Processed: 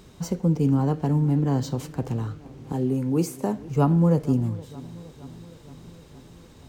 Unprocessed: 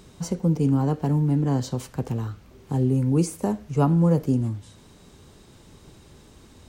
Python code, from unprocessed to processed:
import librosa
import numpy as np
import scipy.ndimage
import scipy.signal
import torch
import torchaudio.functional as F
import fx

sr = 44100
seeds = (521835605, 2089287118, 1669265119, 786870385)

p1 = fx.highpass(x, sr, hz=180.0, slope=12, at=(2.72, 3.57))
p2 = p1 + fx.echo_filtered(p1, sr, ms=467, feedback_pct=67, hz=2300.0, wet_db=-19.5, dry=0)
y = np.interp(np.arange(len(p2)), np.arange(len(p2))[::2], p2[::2])